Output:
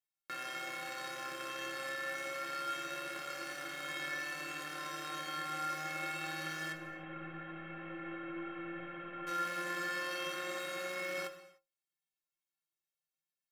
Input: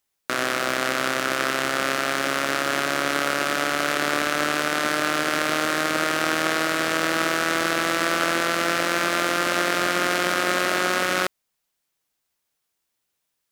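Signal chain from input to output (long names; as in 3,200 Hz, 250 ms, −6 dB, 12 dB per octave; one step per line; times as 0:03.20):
0:06.72–0:09.27: variable-slope delta modulation 16 kbit/s
parametric band 2,100 Hz +3 dB 1.7 octaves
stiff-string resonator 160 Hz, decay 0.28 s, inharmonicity 0.03
reverb whose tail is shaped and stops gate 330 ms falling, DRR 9 dB
level −8 dB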